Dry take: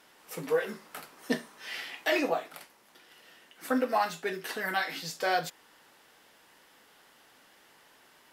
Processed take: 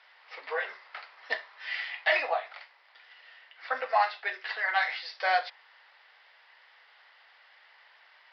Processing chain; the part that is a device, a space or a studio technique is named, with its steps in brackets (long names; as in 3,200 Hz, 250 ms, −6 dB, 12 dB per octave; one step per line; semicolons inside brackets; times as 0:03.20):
dynamic equaliser 760 Hz, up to +4 dB, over −40 dBFS, Q 1.4
musical greeting card (downsampling to 11,025 Hz; high-pass filter 640 Hz 24 dB per octave; parametric band 2,000 Hz +7.5 dB 0.45 octaves)